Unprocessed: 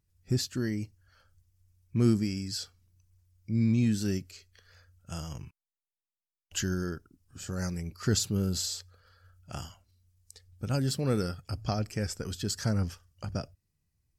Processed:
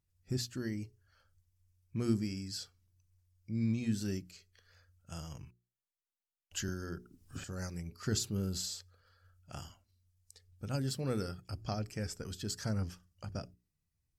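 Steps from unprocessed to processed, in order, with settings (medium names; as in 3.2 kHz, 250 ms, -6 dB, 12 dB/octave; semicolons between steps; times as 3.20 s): hum notches 60/120/180/240/300/360/420 Hz; 6.68–7.44 s: three bands compressed up and down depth 100%; trim -6 dB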